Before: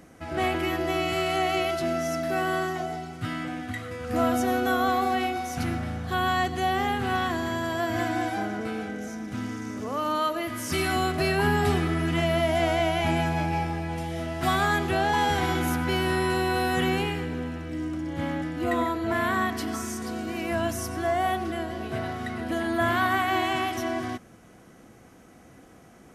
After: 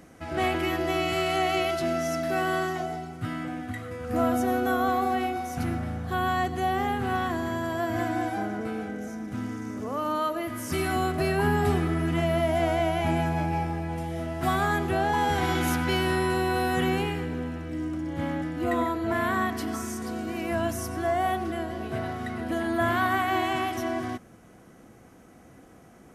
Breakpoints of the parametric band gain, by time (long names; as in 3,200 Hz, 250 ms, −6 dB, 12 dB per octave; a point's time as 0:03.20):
parametric band 4,000 Hz 2.3 octaves
0:02.74 0 dB
0:03.15 −6.5 dB
0:15.22 −6.5 dB
0:15.70 +4.5 dB
0:16.31 −3.5 dB